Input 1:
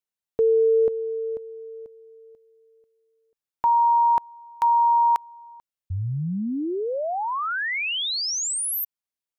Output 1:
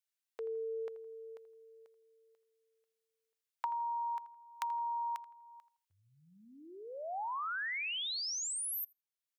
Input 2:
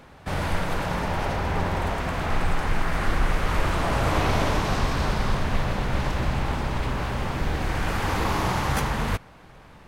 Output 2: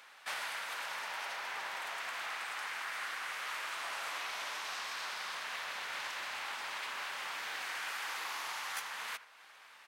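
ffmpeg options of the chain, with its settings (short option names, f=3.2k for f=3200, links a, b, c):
-filter_complex "[0:a]highpass=1.5k,acompressor=threshold=-37dB:ratio=10:attack=58:release=707:knee=1:detection=rms,asplit=2[a][b];[b]adelay=82,lowpass=f=2.4k:p=1,volume=-15dB,asplit=2[c][d];[d]adelay=82,lowpass=f=2.4k:p=1,volume=0.32,asplit=2[e][f];[f]adelay=82,lowpass=f=2.4k:p=1,volume=0.32[g];[a][c][e][g]amix=inputs=4:normalize=0"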